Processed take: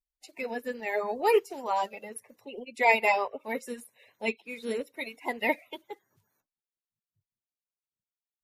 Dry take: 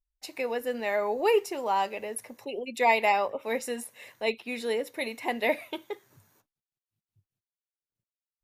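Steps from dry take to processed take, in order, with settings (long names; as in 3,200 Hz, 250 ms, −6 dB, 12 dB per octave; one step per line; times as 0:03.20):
spectral magnitudes quantised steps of 30 dB
expander for the loud parts 1.5 to 1, over −45 dBFS
level +2 dB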